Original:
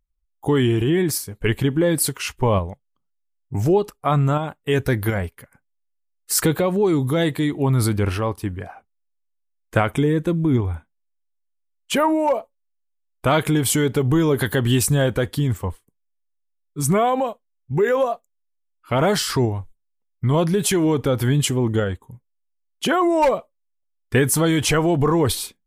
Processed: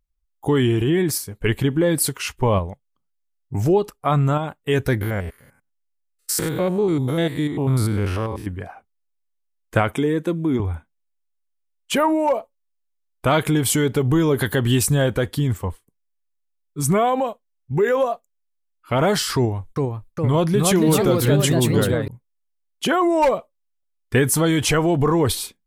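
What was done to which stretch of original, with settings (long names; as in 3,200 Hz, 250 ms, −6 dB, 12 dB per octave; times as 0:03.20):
0:05.01–0:08.47: spectrum averaged block by block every 100 ms
0:09.94–0:10.60: high-pass filter 200 Hz
0:19.35–0:22.08: delay with pitch and tempo change per echo 410 ms, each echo +2 semitones, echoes 2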